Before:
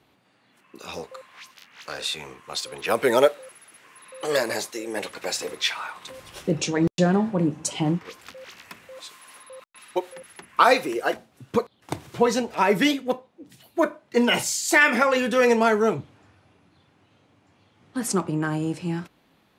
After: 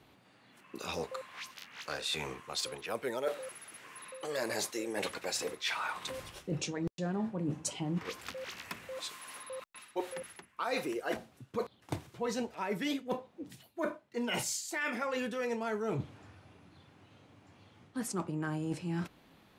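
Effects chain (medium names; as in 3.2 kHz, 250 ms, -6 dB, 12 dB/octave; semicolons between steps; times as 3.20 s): bass shelf 110 Hz +4.5 dB; reverse; compression 10:1, threshold -32 dBFS, peak gain reduction 21 dB; reverse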